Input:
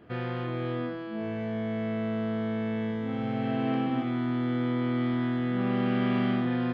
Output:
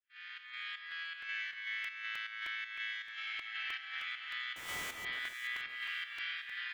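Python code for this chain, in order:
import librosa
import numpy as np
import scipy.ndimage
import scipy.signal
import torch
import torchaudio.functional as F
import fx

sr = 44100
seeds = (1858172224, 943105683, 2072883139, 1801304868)

p1 = fx.fade_in_head(x, sr, length_s=1.31)
p2 = scipy.signal.sosfilt(scipy.signal.butter(6, 1700.0, 'highpass', fs=sr, output='sos'), p1)
p3 = fx.rider(p2, sr, range_db=5, speed_s=0.5)
p4 = fx.schmitt(p3, sr, flips_db=-55.5, at=(4.56, 5.05))
p5 = fx.volume_shaper(p4, sr, bpm=159, per_beat=1, depth_db=-10, release_ms=155.0, shape='slow start')
p6 = p5 + fx.echo_alternate(p5, sr, ms=282, hz=2400.0, feedback_pct=56, wet_db=-6, dry=0)
p7 = fx.buffer_crackle(p6, sr, first_s=0.91, period_s=0.31, block=128, kind='repeat')
y = p7 * librosa.db_to_amplitude(6.5)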